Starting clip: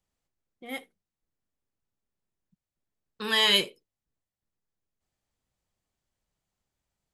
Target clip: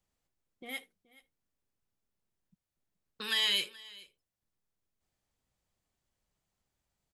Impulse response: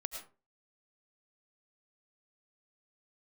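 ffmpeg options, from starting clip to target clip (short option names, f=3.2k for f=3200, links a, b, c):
-filter_complex "[0:a]acrossover=split=1700[a][b];[a]acompressor=threshold=-47dB:ratio=4[c];[b]alimiter=limit=-20dB:level=0:latency=1[d];[c][d]amix=inputs=2:normalize=0,aecho=1:1:426:0.0841"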